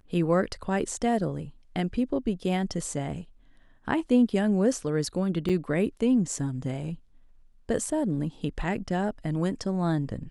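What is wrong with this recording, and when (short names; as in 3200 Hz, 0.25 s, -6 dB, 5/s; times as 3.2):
5.49–5.5 gap 6.2 ms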